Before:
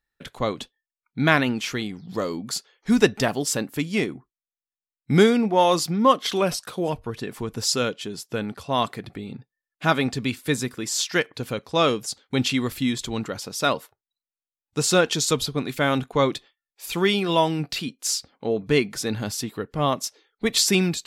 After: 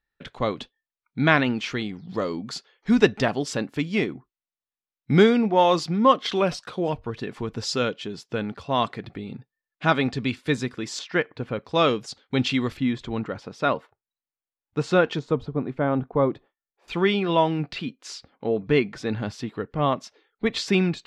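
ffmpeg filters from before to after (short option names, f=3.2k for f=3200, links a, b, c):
-af "asetnsamples=n=441:p=0,asendcmd='10.99 lowpass f 2100;11.65 lowpass f 4200;12.77 lowpass f 2200;15.19 lowpass f 1000;16.88 lowpass f 2800',lowpass=4.2k"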